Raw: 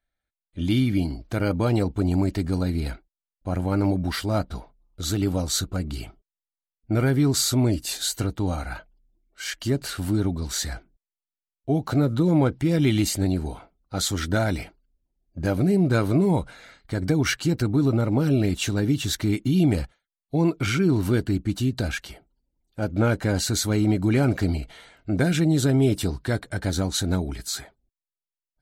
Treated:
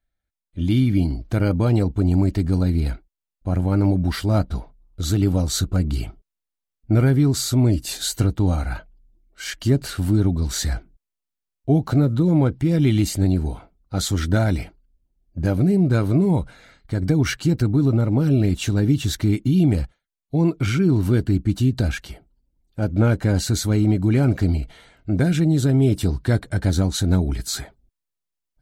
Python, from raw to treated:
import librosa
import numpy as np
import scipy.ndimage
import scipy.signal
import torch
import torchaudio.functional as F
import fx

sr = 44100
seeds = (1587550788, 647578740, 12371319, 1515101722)

p1 = fx.low_shelf(x, sr, hz=270.0, db=8.5)
p2 = fx.rider(p1, sr, range_db=10, speed_s=0.5)
p3 = p1 + F.gain(torch.from_numpy(p2), 0.5).numpy()
y = F.gain(torch.from_numpy(p3), -7.5).numpy()